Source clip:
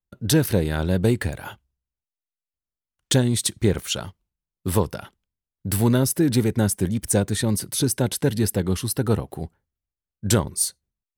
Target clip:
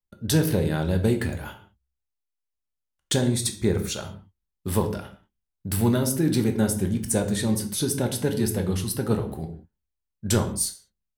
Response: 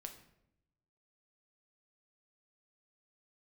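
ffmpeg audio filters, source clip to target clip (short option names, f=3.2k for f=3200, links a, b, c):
-filter_complex "[0:a]asettb=1/sr,asplit=3[a][b][c];[a]atrim=end=3.134[d];[b]atrim=start=3.13:end=3.95,asetpts=PTS-STARTPTS,afade=t=in:d=0.004:c=qsin,afade=t=out:st=0.816:d=0.004:c=qsin,bandreject=f=3k:w=5.1[e];[c]atrim=start=3.946[f];[d][e]acrossfade=d=0.004:c1=hsin:c2=qsin[g];[g][f]acrossfade=d=0.004:c1=qsin:c2=hsin[h];[1:a]atrim=start_sample=2205,afade=t=out:st=0.32:d=0.01,atrim=end_sample=14553,asetrate=57330,aresample=44100[i];[h][i]afir=irnorm=-1:irlink=0,volume=4.5dB"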